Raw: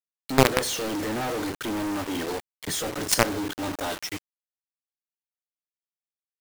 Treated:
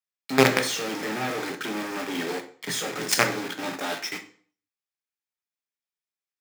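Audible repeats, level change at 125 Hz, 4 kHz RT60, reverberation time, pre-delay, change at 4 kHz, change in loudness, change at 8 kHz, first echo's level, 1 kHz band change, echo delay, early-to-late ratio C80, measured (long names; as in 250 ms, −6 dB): no echo audible, −3.0 dB, 0.45 s, 0.45 s, 3 ms, +1.0 dB, +0.5 dB, −1.0 dB, no echo audible, −0.5 dB, no echo audible, 16.5 dB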